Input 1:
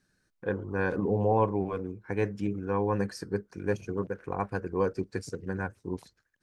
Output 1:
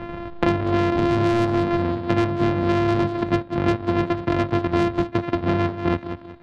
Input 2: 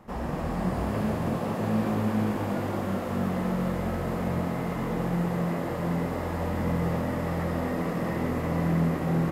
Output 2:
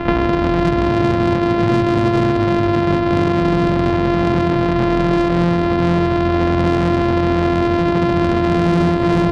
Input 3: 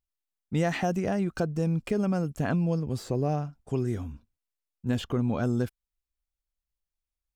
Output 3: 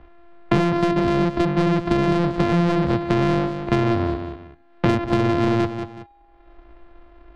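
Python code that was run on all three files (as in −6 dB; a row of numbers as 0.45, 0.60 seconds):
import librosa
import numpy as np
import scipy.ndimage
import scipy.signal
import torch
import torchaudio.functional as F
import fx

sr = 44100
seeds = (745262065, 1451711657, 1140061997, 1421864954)

y = np.r_[np.sort(x[:len(x) // 128 * 128].reshape(-1, 128), axis=1).ravel(), x[len(x) // 128 * 128:]]
y = scipy.signal.sosfilt(scipy.signal.bessel(4, 1900.0, 'lowpass', norm='mag', fs=sr, output='sos'), y)
y = fx.comb_fb(y, sr, f0_hz=270.0, decay_s=0.95, harmonics='all', damping=0.0, mix_pct=30)
y = 10.0 ** (-28.0 / 20.0) * np.tanh(y / 10.0 ** (-28.0 / 20.0))
y = fx.echo_feedback(y, sr, ms=186, feedback_pct=16, wet_db=-13.0)
y = fx.band_squash(y, sr, depth_pct=100)
y = librosa.util.normalize(y) * 10.0 ** (-2 / 20.0)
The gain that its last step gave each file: +14.5, +17.0, +14.0 decibels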